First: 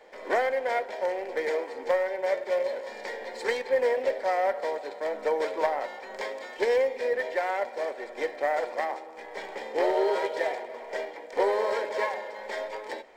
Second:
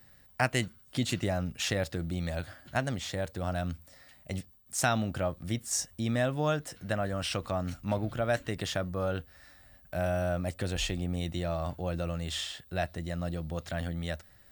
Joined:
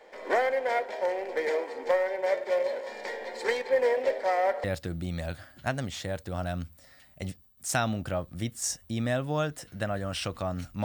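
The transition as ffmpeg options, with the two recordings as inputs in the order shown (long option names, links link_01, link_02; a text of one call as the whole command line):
ffmpeg -i cue0.wav -i cue1.wav -filter_complex "[0:a]apad=whole_dur=10.84,atrim=end=10.84,atrim=end=4.642[link_01];[1:a]atrim=start=1.728:end=7.93[link_02];[link_01][link_02]acrossfade=duration=0.004:curve1=hsin:curve2=hsin" out.wav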